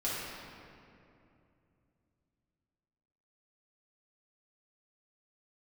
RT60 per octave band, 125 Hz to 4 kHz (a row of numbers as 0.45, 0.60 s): 4.0, 3.5, 2.9, 2.5, 2.2, 1.5 s